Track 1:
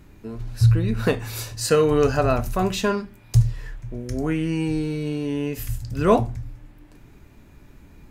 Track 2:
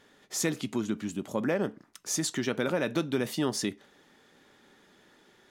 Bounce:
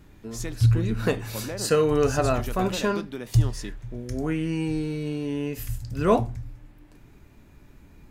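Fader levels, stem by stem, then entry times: −3.0, −6.5 decibels; 0.00, 0.00 seconds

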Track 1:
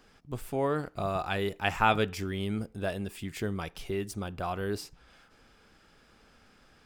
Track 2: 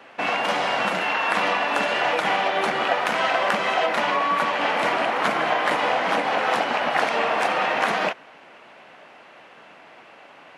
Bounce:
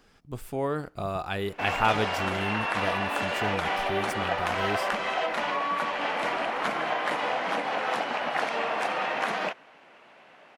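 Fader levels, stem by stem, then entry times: 0.0, −6.5 decibels; 0.00, 1.40 seconds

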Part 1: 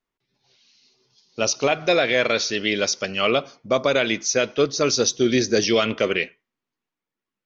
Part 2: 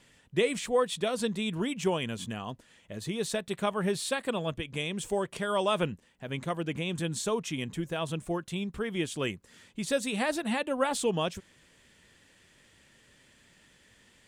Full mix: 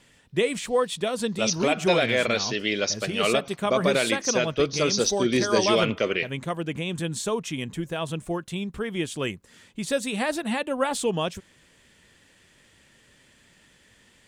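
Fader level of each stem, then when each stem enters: −3.5, +3.0 decibels; 0.00, 0.00 seconds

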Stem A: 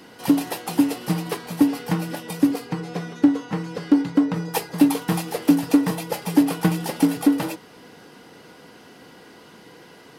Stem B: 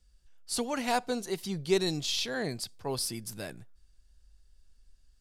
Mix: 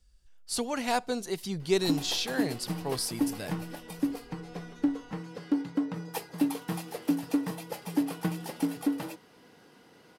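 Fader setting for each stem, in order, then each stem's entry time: −11.0, +0.5 decibels; 1.60, 0.00 seconds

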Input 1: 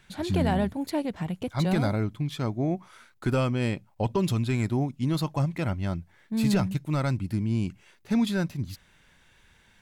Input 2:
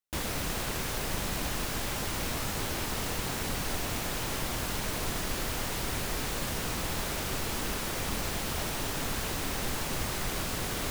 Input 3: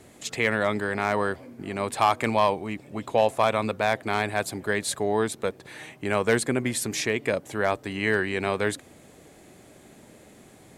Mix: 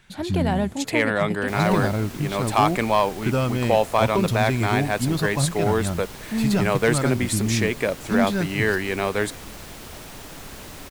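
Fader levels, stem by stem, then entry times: +2.5, −6.5, +2.0 decibels; 0.00, 1.35, 0.55 seconds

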